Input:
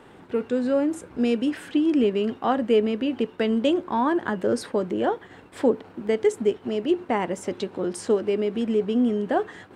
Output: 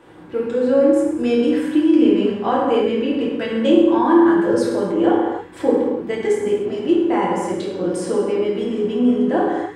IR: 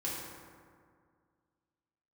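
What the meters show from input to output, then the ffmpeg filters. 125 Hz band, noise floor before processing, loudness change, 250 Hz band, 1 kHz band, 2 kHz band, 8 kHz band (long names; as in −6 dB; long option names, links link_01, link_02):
+4.5 dB, −49 dBFS, +6.5 dB, +7.5 dB, +6.0 dB, +4.5 dB, can't be measured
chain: -filter_complex "[1:a]atrim=start_sample=2205,afade=type=out:start_time=0.36:duration=0.01,atrim=end_sample=16317[link_01];[0:a][link_01]afir=irnorm=-1:irlink=0,volume=1.5dB"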